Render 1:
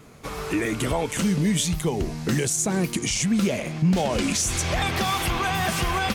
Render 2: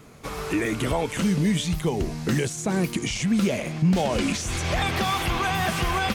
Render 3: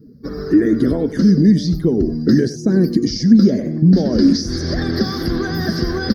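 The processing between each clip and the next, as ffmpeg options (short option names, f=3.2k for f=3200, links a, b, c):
-filter_complex "[0:a]acrossover=split=4100[a][b];[b]acompressor=threshold=-34dB:ratio=4:attack=1:release=60[c];[a][c]amix=inputs=2:normalize=0"
-af "afftdn=nr=21:nf=-40,firequalizer=gain_entry='entry(120,0);entry(260,12);entry(860,-16);entry(1700,0);entry(2500,-28);entry(4900,13);entry(7500,-23);entry(14000,11)':delay=0.05:min_phase=1,aecho=1:1:94:0.178,volume=4dB"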